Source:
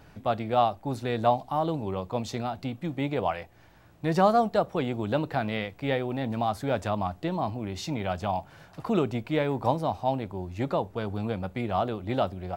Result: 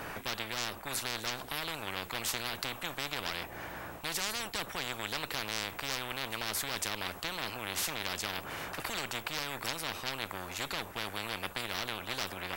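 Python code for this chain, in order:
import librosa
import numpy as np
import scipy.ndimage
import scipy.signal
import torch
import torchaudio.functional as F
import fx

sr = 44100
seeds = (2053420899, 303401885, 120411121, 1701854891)

p1 = fx.peak_eq(x, sr, hz=4600.0, db=-10.0, octaves=1.7)
p2 = fx.rider(p1, sr, range_db=10, speed_s=0.5)
p3 = p1 + (p2 * librosa.db_to_amplitude(-2.0))
p4 = fx.cheby_harmonics(p3, sr, harmonics=(6,), levels_db=(-20,), full_scale_db=-6.5)
p5 = fx.low_shelf(p4, sr, hz=390.0, db=-11.5)
p6 = 10.0 ** (-13.0 / 20.0) * np.tanh(p5 / 10.0 ** (-13.0 / 20.0))
y = fx.spectral_comp(p6, sr, ratio=10.0)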